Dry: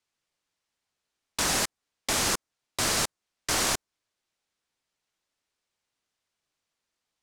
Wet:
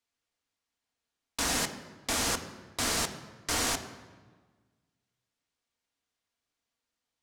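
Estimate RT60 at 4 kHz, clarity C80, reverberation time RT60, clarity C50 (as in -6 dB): 1.0 s, 12.5 dB, 1.4 s, 11.0 dB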